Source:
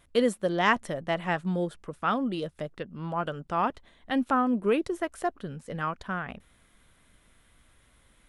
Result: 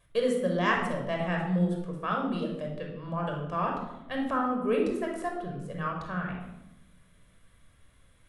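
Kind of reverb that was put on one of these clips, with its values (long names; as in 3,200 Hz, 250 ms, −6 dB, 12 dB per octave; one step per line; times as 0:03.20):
rectangular room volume 3,300 cubic metres, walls furnished, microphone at 5.6 metres
level −7 dB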